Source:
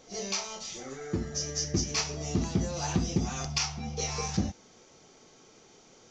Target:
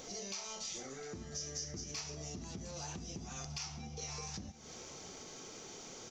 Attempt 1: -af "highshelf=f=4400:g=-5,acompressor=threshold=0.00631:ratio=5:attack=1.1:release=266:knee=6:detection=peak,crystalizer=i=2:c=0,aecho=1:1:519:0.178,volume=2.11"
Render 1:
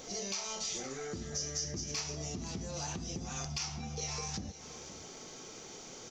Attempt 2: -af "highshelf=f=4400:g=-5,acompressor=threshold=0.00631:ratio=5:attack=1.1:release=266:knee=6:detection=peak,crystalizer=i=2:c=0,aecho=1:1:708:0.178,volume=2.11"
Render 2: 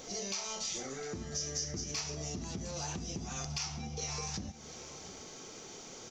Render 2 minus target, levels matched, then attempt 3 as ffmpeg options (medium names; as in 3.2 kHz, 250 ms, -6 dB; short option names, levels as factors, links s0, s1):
compression: peak gain reduction -5 dB
-af "highshelf=f=4400:g=-5,acompressor=threshold=0.00299:ratio=5:attack=1.1:release=266:knee=6:detection=peak,crystalizer=i=2:c=0,aecho=1:1:708:0.178,volume=2.11"